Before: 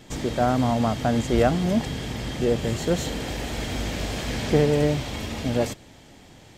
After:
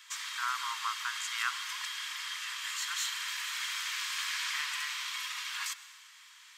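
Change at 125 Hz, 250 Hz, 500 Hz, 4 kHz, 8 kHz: below −40 dB, below −40 dB, below −40 dB, 0.0 dB, 0.0 dB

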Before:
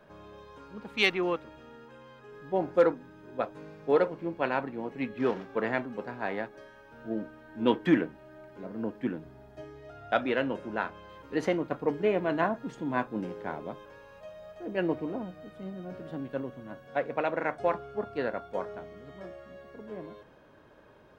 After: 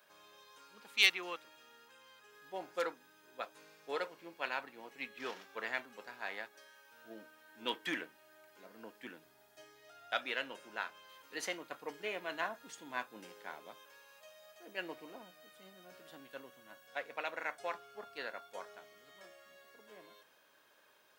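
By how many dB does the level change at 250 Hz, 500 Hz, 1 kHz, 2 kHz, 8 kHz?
−20.0 dB, −15.5 dB, −10.0 dB, −3.5 dB, can't be measured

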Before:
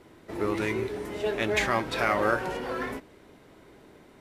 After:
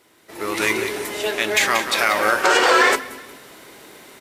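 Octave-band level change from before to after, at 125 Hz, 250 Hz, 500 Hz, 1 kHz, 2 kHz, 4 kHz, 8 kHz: −5.0, +3.5, +6.5, +10.5, +12.5, +15.5, +18.0 decibels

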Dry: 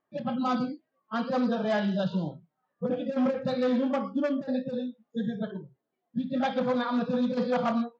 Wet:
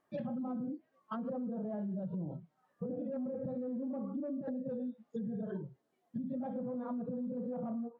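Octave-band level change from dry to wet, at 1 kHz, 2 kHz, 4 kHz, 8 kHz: −16.5 dB, below −20 dB, below −25 dB, can't be measured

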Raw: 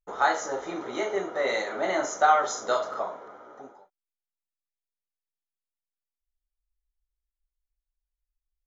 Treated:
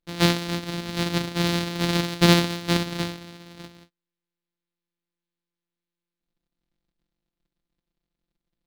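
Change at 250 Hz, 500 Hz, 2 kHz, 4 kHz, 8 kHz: +14.5 dB, −1.5 dB, +1.5 dB, +13.5 dB, can't be measured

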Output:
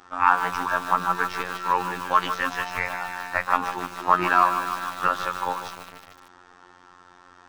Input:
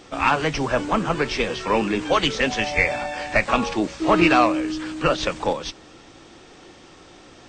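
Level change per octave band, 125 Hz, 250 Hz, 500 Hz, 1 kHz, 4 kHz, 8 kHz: −11.0, −14.0, −10.5, +2.0, −9.5, −6.0 decibels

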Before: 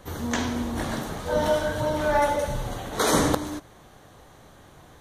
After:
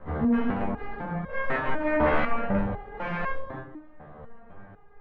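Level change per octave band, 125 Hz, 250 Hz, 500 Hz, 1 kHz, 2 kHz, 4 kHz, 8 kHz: −2.5 dB, +0.5 dB, −4.5 dB, −3.5 dB, +0.5 dB, −15.5 dB, below −40 dB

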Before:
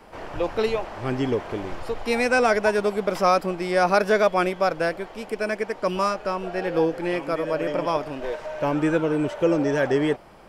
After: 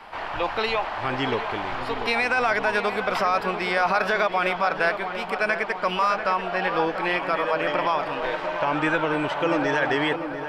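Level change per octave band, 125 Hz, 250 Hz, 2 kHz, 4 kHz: −4.5, −4.5, +4.5, +4.5 decibels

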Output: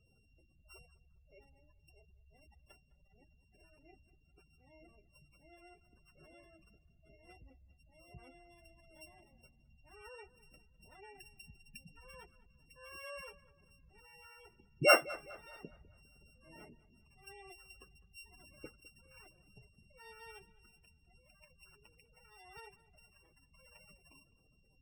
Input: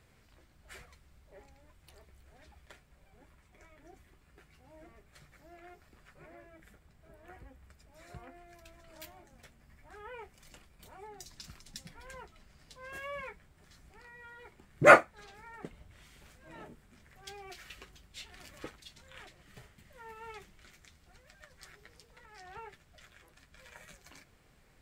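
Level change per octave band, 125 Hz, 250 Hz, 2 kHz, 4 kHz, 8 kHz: −6.5, −8.5, −7.0, +4.0, 0.0 decibels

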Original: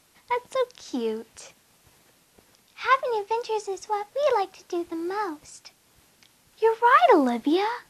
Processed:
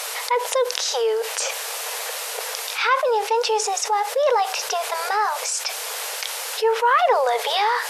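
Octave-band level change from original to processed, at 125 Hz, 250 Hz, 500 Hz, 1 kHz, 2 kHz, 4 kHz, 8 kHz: can't be measured, below −20 dB, +3.5 dB, +3.5 dB, +5.0 dB, +13.5 dB, +20.5 dB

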